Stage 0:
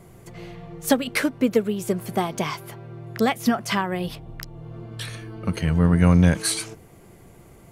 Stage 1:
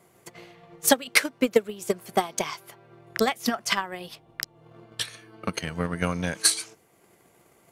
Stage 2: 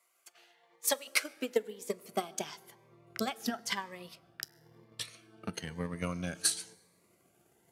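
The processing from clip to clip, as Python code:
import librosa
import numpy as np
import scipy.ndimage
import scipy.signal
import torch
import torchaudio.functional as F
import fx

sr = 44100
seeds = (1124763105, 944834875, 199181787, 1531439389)

y1 = fx.dynamic_eq(x, sr, hz=5900.0, q=0.95, threshold_db=-45.0, ratio=4.0, max_db=4)
y1 = fx.highpass(y1, sr, hz=580.0, slope=6)
y1 = fx.transient(y1, sr, attack_db=11, sustain_db=-2)
y1 = y1 * librosa.db_to_amplitude(-5.0)
y2 = fx.rev_fdn(y1, sr, rt60_s=1.7, lf_ratio=0.9, hf_ratio=0.6, size_ms=83.0, drr_db=18.0)
y2 = fx.filter_sweep_highpass(y2, sr, from_hz=1100.0, to_hz=66.0, start_s=0.25, end_s=3.13, q=0.78)
y2 = fx.notch_cascade(y2, sr, direction='rising', hz=0.99)
y2 = y2 * librosa.db_to_amplitude(-8.0)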